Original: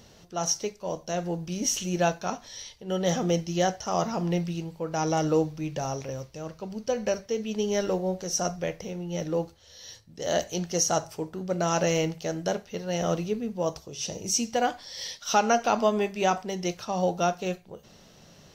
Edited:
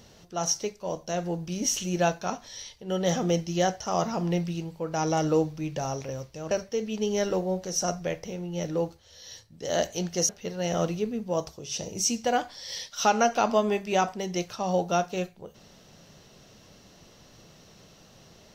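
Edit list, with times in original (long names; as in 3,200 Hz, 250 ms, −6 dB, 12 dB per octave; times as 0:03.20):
0:06.51–0:07.08: remove
0:10.86–0:12.58: remove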